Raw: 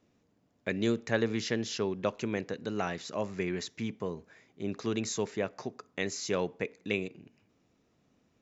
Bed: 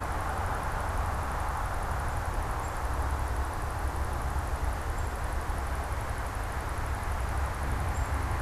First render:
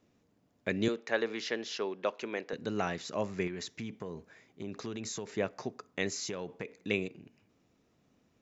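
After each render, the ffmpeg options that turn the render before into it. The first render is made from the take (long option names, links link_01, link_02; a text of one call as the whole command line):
ffmpeg -i in.wav -filter_complex "[0:a]asettb=1/sr,asplit=3[link_01][link_02][link_03];[link_01]atrim=end=0.884[link_04];[link_02]atrim=start=0.88:end=2.53,asetpts=PTS-STARTPTS,afade=type=in:duration=0.004:curve=qsin,afade=type=out:start_time=1.646:duration=0.004:curve=qsin,highpass=400,lowpass=5100[link_05];[link_03]atrim=start=2.526[link_06];[link_04][link_05]acrossfade=duration=0.004:curve1=hsin:curve2=qsin[link_07];[link_07][link_06]acrossfade=duration=0.004:curve1=qsin:curve2=hsin,asettb=1/sr,asplit=3[link_08][link_09][link_10];[link_08]atrim=end=3.474[link_11];[link_09]atrim=start=3.47:end=5.32,asetpts=PTS-STARTPTS,afade=type=in:duration=0.004:curve=qsin,afade=type=out:start_time=1.846:duration=0.004:curve=qsin,acompressor=threshold=-35dB:ratio=6:attack=3.2:release=140:knee=1:detection=peak[link_12];[link_10]atrim=start=5.316[link_13];[link_11][link_12]acrossfade=duration=0.004:curve1=hsin:curve2=qsin[link_14];[link_14][link_13]acrossfade=duration=0.004:curve1=qsin:curve2=hsin,asettb=1/sr,asplit=3[link_15][link_16][link_17];[link_15]atrim=end=6.134[link_18];[link_16]atrim=start=6.13:end=6.79,asetpts=PTS-STARTPTS,afade=type=in:duration=0.004:curve=qsin,afade=type=out:start_time=0.656:duration=0.004:curve=qsin,acompressor=threshold=-33dB:ratio=12:attack=3.2:release=140:knee=1:detection=peak[link_19];[link_17]atrim=start=6.786[link_20];[link_18][link_19]acrossfade=duration=0.004:curve1=hsin:curve2=qsin[link_21];[link_21][link_20]acrossfade=duration=0.004:curve1=qsin:curve2=hsin" out.wav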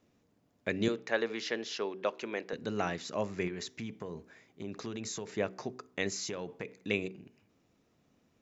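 ffmpeg -i in.wav -af "bandreject=frequency=63.37:width_type=h:width=4,bandreject=frequency=126.74:width_type=h:width=4,bandreject=frequency=190.11:width_type=h:width=4,bandreject=frequency=253.48:width_type=h:width=4,bandreject=frequency=316.85:width_type=h:width=4,bandreject=frequency=380.22:width_type=h:width=4,bandreject=frequency=443.59:width_type=h:width=4" out.wav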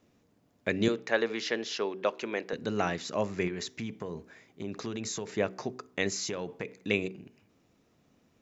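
ffmpeg -i in.wav -af "volume=3.5dB" out.wav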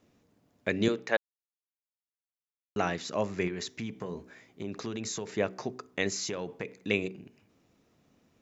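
ffmpeg -i in.wav -filter_complex "[0:a]asettb=1/sr,asplit=3[link_01][link_02][link_03];[link_01]atrim=end=3.944[link_04];[link_02]atrim=start=3.94:end=4.63,asetpts=PTS-STARTPTS,afade=type=in:duration=0.004:curve=qsin,afade=type=out:start_time=0.686:duration=0.004:curve=qsin,asplit=2[link_05][link_06];[link_06]adelay=16,volume=-6.5dB[link_07];[link_05][link_07]amix=inputs=2:normalize=0,atrim=end_sample=30429[link_08];[link_03]atrim=start=4.626[link_09];[link_04][link_08]acrossfade=duration=0.004:curve1=hsin:curve2=qsin[link_10];[link_10][link_09]acrossfade=duration=0.004:curve1=qsin:curve2=hsin,asplit=3[link_11][link_12][link_13];[link_11]atrim=end=1.17,asetpts=PTS-STARTPTS,afade=type=out:start_time=1.166:duration=0.004:curve=hsin[link_14];[link_12]atrim=start=1.17:end=2.76,asetpts=PTS-STARTPTS,volume=0[link_15];[link_13]atrim=start=2.76,asetpts=PTS-STARTPTS,afade=type=in:duration=0.004:curve=hsin[link_16];[link_14][link_15][link_16]concat=n=3:v=0:a=1" out.wav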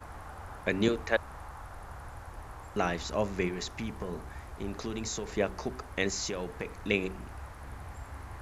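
ffmpeg -i in.wav -i bed.wav -filter_complex "[1:a]volume=-13dB[link_01];[0:a][link_01]amix=inputs=2:normalize=0" out.wav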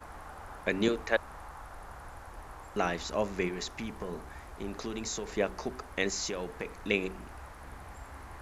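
ffmpeg -i in.wav -af "equalizer=frequency=95:width_type=o:width=1.3:gain=-7.5" out.wav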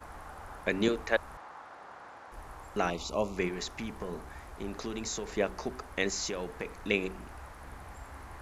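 ffmpeg -i in.wav -filter_complex "[0:a]asettb=1/sr,asplit=3[link_01][link_02][link_03];[link_01]atrim=end=1.374[link_04];[link_02]atrim=start=1.37:end=2.32,asetpts=PTS-STARTPTS,afade=type=in:duration=0.004:curve=qsin,afade=type=out:start_time=0.946:duration=0.004:curve=qsin,highpass=250,lowpass=5100[link_05];[link_03]atrim=start=2.316[link_06];[link_04][link_05]acrossfade=duration=0.004:curve1=hsin:curve2=qsin[link_07];[link_07][link_06]acrossfade=duration=0.004:curve1=qsin:curve2=hsin,asettb=1/sr,asplit=3[link_08][link_09][link_10];[link_08]atrim=end=2.904[link_11];[link_09]atrim=start=2.9:end=3.37,asetpts=PTS-STARTPTS,afade=type=in:duration=0.004:curve=qsin,afade=type=out:start_time=0.466:duration=0.004:curve=qsin,asuperstop=centerf=1700:order=4:qfactor=1.6[link_12];[link_10]atrim=start=3.366[link_13];[link_11][link_12]acrossfade=duration=0.004:curve1=hsin:curve2=qsin[link_14];[link_14][link_13]acrossfade=duration=0.004:curve1=qsin:curve2=hsin" out.wav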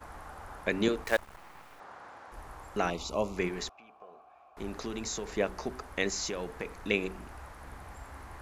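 ffmpeg -i in.wav -filter_complex "[0:a]asettb=1/sr,asplit=3[link_01][link_02][link_03];[link_01]atrim=end=1.044[link_04];[link_02]atrim=start=1.04:end=1.8,asetpts=PTS-STARTPTS,afade=type=in:duration=0.004:curve=qsin,afade=type=out:start_time=0.756:duration=0.004:curve=qsin,acrusher=bits=7:dc=4:mix=0:aa=0.000001[link_05];[link_03]atrim=start=1.796[link_06];[link_04][link_05]acrossfade=duration=0.004:curve1=hsin:curve2=qsin[link_07];[link_07][link_06]acrossfade=duration=0.004:curve1=qsin:curve2=hsin,asettb=1/sr,asplit=3[link_08][link_09][link_10];[link_08]atrim=end=3.694[link_11];[link_09]atrim=start=3.69:end=4.57,asetpts=PTS-STARTPTS,afade=type=in:duration=0.004:curve=qsin,afade=type=out:start_time=0.876:duration=0.004:curve=qsin,asplit=3[link_12][link_13][link_14];[link_12]bandpass=frequency=730:width_type=q:width=8,volume=0dB[link_15];[link_13]bandpass=frequency=1090:width_type=q:width=8,volume=-6dB[link_16];[link_14]bandpass=frequency=2440:width_type=q:width=8,volume=-9dB[link_17];[link_15][link_16][link_17]amix=inputs=3:normalize=0[link_18];[link_10]atrim=start=4.566[link_19];[link_11][link_18]acrossfade=duration=0.004:curve1=hsin:curve2=qsin[link_20];[link_20][link_19]acrossfade=duration=0.004:curve1=qsin:curve2=hsin" out.wav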